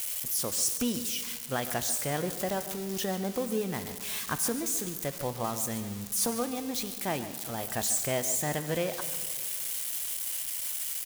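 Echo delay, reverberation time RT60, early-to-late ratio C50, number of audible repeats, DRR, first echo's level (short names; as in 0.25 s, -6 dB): 0.143 s, 2.1 s, 10.0 dB, 1, 9.0 dB, -14.0 dB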